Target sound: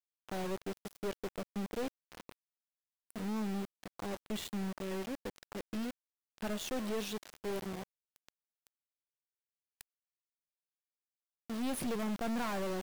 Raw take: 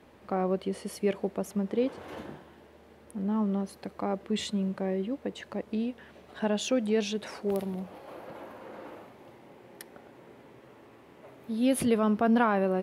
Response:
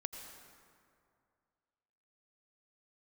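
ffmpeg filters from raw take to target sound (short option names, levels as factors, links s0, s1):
-af "aeval=exprs='val(0)*gte(abs(val(0)),0.0211)':c=same,aeval=exprs='(tanh(31.6*val(0)+0.35)-tanh(0.35))/31.6':c=same,volume=0.708"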